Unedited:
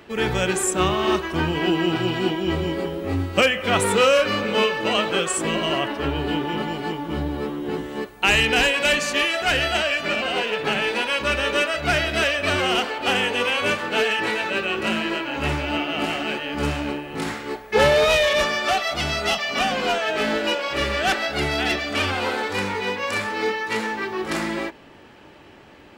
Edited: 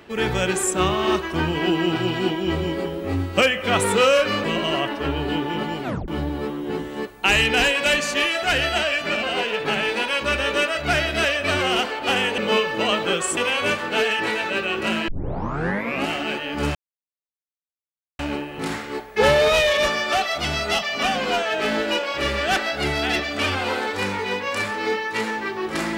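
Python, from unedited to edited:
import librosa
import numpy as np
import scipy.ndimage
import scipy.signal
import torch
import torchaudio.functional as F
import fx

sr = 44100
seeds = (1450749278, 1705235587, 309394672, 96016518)

y = fx.edit(x, sr, fx.move(start_s=4.44, length_s=0.99, to_s=13.37),
    fx.tape_stop(start_s=6.82, length_s=0.25),
    fx.tape_start(start_s=15.08, length_s=0.99),
    fx.insert_silence(at_s=16.75, length_s=1.44), tone=tone)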